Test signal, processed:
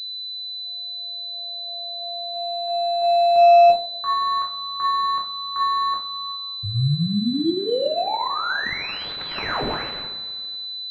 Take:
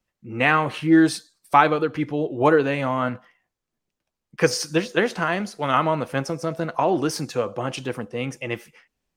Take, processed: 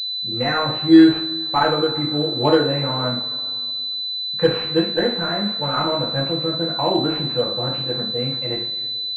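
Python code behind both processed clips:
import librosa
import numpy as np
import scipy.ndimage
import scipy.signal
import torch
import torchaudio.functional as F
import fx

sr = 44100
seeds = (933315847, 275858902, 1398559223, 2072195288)

y = fx.cvsd(x, sr, bps=64000)
y = fx.rev_double_slope(y, sr, seeds[0], early_s=0.39, late_s=2.1, knee_db=-18, drr_db=-5.0)
y = fx.pwm(y, sr, carrier_hz=4000.0)
y = y * 10.0 ** (-5.5 / 20.0)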